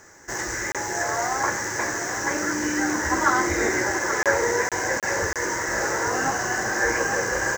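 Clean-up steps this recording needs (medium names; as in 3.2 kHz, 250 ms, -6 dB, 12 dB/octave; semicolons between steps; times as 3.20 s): interpolate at 0.72/4.23/4.69/5.00/5.33 s, 27 ms; inverse comb 831 ms -9.5 dB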